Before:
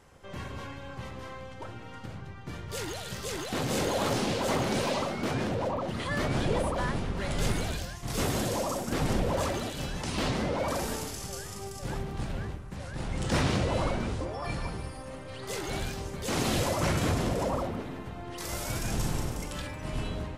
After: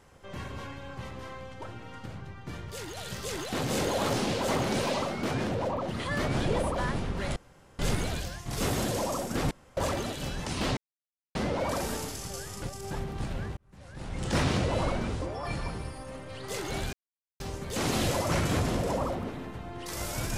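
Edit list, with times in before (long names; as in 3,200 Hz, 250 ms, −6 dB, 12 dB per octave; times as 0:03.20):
0:02.70–0:02.97: clip gain −4 dB
0:07.36: splice in room tone 0.43 s
0:09.08–0:09.34: fill with room tone
0:10.34: splice in silence 0.58 s
0:11.61–0:11.90: reverse
0:12.56–0:13.35: fade in
0:15.92: splice in silence 0.47 s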